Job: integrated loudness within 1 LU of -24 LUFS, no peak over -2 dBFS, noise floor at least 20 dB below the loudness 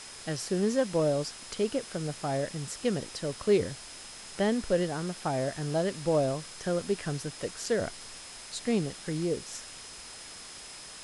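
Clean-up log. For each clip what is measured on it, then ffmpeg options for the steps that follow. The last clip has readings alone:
steady tone 5100 Hz; tone level -50 dBFS; noise floor -46 dBFS; noise floor target -51 dBFS; loudness -31.0 LUFS; peak -14.0 dBFS; loudness target -24.0 LUFS
-> -af "bandreject=f=5.1k:w=30"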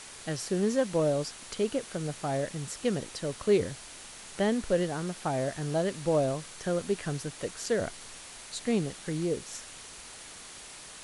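steady tone none; noise floor -47 dBFS; noise floor target -51 dBFS
-> -af "afftdn=nr=6:nf=-47"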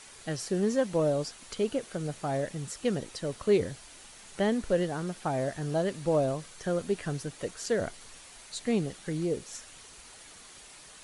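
noise floor -51 dBFS; loudness -31.0 LUFS; peak -14.0 dBFS; loudness target -24.0 LUFS
-> -af "volume=7dB"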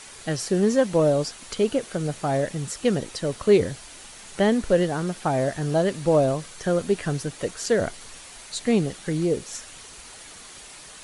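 loudness -24.0 LUFS; peak -7.0 dBFS; noise floor -44 dBFS

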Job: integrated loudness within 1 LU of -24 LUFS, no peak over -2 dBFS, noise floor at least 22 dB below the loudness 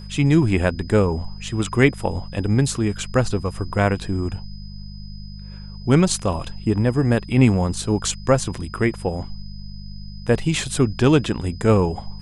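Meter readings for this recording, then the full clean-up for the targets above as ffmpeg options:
hum 50 Hz; harmonics up to 200 Hz; hum level -32 dBFS; steady tone 5000 Hz; tone level -45 dBFS; loudness -20.5 LUFS; peak -1.5 dBFS; loudness target -24.0 LUFS
-> -af "bandreject=f=50:t=h:w=4,bandreject=f=100:t=h:w=4,bandreject=f=150:t=h:w=4,bandreject=f=200:t=h:w=4"
-af "bandreject=f=5k:w=30"
-af "volume=-3.5dB"

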